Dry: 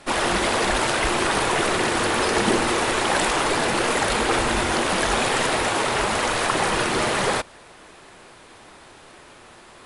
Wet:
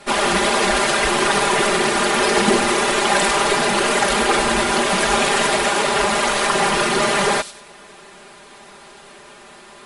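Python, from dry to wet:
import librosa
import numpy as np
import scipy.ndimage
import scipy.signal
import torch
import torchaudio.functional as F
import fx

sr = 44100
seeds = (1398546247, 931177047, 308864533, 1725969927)

y = fx.low_shelf(x, sr, hz=81.0, db=-8.0)
y = y + 0.93 * np.pad(y, (int(5.0 * sr / 1000.0), 0))[:len(y)]
y = fx.echo_wet_highpass(y, sr, ms=95, feedback_pct=33, hz=4300.0, wet_db=-7.0)
y = y * 10.0 ** (1.5 / 20.0)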